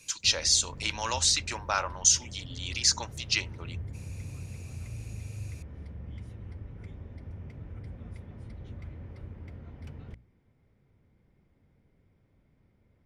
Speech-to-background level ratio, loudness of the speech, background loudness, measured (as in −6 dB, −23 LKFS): 17.5 dB, −26.0 LKFS, −43.5 LKFS